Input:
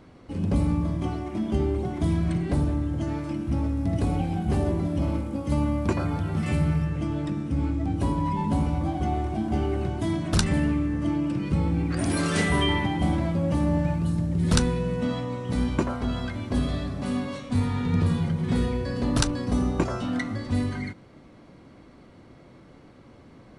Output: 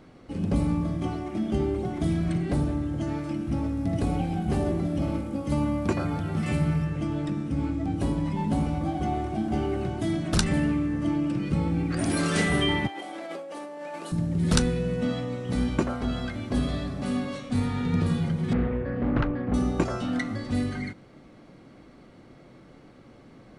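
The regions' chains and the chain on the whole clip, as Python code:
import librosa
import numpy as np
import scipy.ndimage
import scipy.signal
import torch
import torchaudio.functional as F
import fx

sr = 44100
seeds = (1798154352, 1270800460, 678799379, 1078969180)

y = fx.chain(x, sr, fx.highpass(hz=390.0, slope=24),
    fx.over_compress(threshold_db=-37.0, ratio=-1.0), at=(12.87, 14.12))
y = fx.chain(y, sr, fx.lowpass(hz=2200.0, slope=24),
    fx.doppler_dist(depth_ms=0.46), at=(18.53, 19.54))
y = fx.peak_eq(y, sr, hz=81.0, db=-9.5, octaves=0.42)
y = fx.notch(y, sr, hz=990.0, q=14.0)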